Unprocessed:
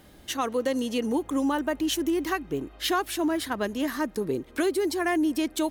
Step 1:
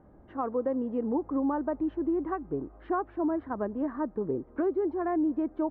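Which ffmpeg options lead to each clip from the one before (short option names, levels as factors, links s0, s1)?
-af "lowpass=f=1200:w=0.5412,lowpass=f=1200:w=1.3066,volume=0.75"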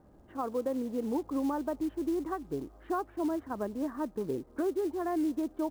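-af "acrusher=bits=6:mode=log:mix=0:aa=0.000001,volume=0.708"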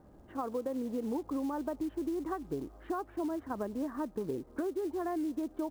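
-af "acompressor=threshold=0.0224:ratio=6,volume=1.19"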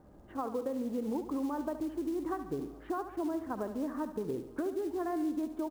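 -af "aecho=1:1:71|142|213|284|355|426:0.282|0.161|0.0916|0.0522|0.0298|0.017"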